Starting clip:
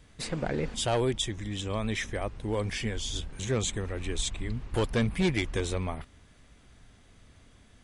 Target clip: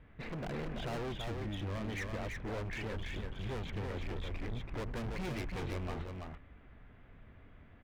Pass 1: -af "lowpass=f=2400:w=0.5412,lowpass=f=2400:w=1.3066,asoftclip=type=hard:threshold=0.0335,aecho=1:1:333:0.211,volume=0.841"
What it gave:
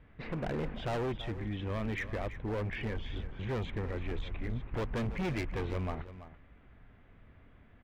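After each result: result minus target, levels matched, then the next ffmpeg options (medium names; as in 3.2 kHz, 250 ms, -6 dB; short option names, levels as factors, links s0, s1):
echo-to-direct -9.5 dB; hard clipper: distortion -4 dB
-af "lowpass=f=2400:w=0.5412,lowpass=f=2400:w=1.3066,asoftclip=type=hard:threshold=0.0335,aecho=1:1:333:0.631,volume=0.841"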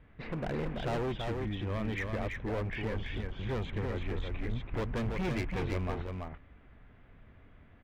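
hard clipper: distortion -4 dB
-af "lowpass=f=2400:w=0.5412,lowpass=f=2400:w=1.3066,asoftclip=type=hard:threshold=0.015,aecho=1:1:333:0.631,volume=0.841"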